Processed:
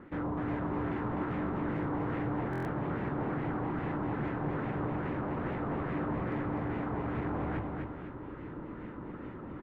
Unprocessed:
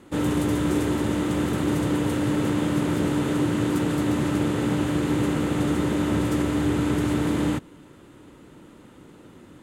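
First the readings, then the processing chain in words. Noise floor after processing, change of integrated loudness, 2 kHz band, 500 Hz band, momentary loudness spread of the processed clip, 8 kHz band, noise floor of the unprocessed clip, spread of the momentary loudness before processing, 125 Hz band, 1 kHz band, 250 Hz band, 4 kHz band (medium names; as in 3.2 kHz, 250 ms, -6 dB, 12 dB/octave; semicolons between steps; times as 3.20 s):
-44 dBFS, -11.5 dB, -8.0 dB, -9.0 dB, 10 LU, under -35 dB, -49 dBFS, 1 LU, -9.0 dB, -4.5 dB, -12.0 dB, under -20 dB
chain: low-pass 10 kHz; tilt EQ -1.5 dB/octave; hum notches 50/100 Hz; reverse; compression 6:1, threshold -29 dBFS, peak gain reduction 12.5 dB; reverse; hard clipper -32.5 dBFS, distortion -9 dB; LFO low-pass sine 2.4 Hz 970–2100 Hz; on a send: feedback delay 252 ms, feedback 41%, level -4 dB; on the sum: buffer glitch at 2.51 s, samples 1024, times 5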